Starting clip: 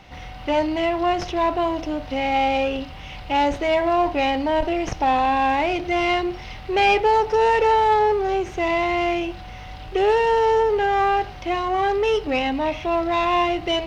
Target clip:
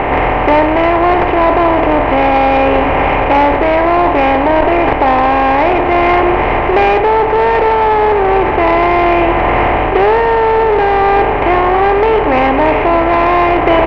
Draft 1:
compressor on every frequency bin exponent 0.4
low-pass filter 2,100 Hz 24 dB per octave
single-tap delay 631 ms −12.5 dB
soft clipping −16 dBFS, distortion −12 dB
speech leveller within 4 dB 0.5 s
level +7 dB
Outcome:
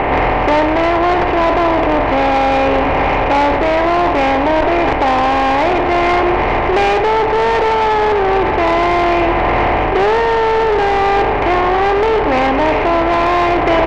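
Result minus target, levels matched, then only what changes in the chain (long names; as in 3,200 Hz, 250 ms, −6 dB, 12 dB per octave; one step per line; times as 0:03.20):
soft clipping: distortion +8 dB
change: soft clipping −9 dBFS, distortion −20 dB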